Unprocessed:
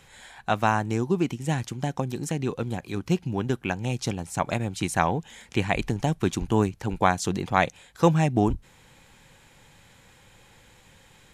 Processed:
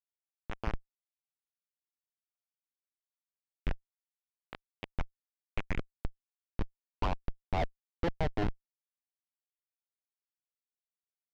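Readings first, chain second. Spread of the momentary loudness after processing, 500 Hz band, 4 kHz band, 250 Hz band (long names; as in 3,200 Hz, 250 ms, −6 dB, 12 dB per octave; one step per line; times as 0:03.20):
15 LU, −15.0 dB, −14.0 dB, −18.0 dB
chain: on a send: echo with shifted repeats 467 ms, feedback 64%, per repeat +61 Hz, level −17.5 dB
on the sum: band-pass filter sweep 3,100 Hz → 660 Hz, 0:05.09–0:07.82
comparator with hysteresis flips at −25 dBFS
high-frequency loss of the air 230 metres
level +10.5 dB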